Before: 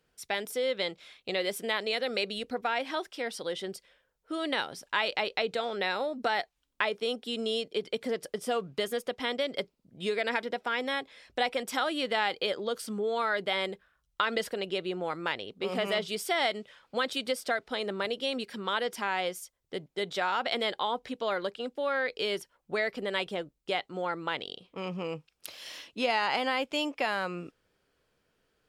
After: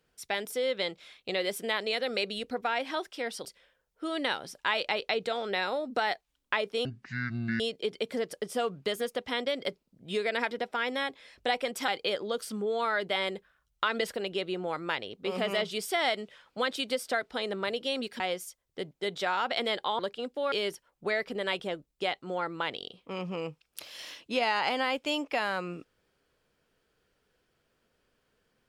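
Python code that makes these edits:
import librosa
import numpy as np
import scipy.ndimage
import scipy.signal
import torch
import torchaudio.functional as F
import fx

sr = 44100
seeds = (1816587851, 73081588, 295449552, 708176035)

y = fx.edit(x, sr, fx.cut(start_s=3.45, length_s=0.28),
    fx.speed_span(start_s=7.13, length_s=0.39, speed=0.52),
    fx.cut(start_s=11.8, length_s=0.45),
    fx.cut(start_s=18.57, length_s=0.58),
    fx.cut(start_s=20.94, length_s=0.46),
    fx.cut(start_s=21.93, length_s=0.26), tone=tone)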